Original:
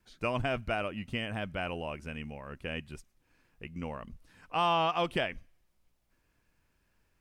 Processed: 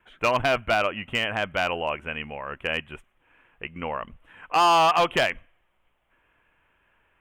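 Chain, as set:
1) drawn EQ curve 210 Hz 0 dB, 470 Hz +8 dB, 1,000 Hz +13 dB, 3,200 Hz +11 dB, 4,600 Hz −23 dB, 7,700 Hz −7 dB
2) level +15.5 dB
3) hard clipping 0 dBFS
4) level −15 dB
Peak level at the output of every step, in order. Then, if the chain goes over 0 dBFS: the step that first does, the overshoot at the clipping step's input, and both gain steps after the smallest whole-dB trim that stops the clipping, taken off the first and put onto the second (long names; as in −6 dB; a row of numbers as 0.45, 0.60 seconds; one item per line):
−6.0, +9.5, 0.0, −15.0 dBFS
step 2, 9.5 dB
step 2 +5.5 dB, step 4 −5 dB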